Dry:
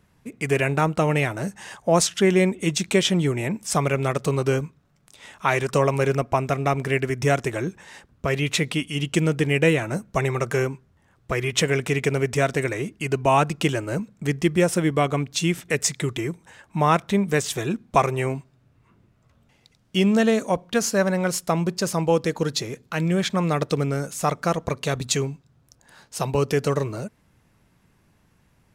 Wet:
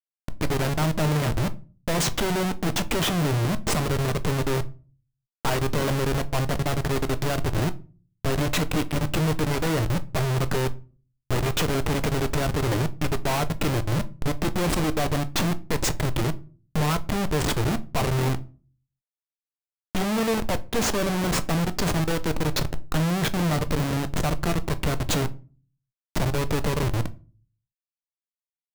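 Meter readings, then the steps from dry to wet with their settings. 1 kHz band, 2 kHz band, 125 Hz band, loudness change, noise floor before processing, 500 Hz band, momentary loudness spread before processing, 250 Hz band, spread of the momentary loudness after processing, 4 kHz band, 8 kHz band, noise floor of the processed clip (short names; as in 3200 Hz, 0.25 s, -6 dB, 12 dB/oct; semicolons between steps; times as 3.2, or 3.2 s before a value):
-3.5 dB, -4.0 dB, 0.0 dB, -2.5 dB, -62 dBFS, -5.5 dB, 9 LU, -2.5 dB, 5 LU, -1.0 dB, -3.0 dB, under -85 dBFS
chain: Schmitt trigger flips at -25 dBFS; shoebox room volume 190 m³, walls furnished, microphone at 0.44 m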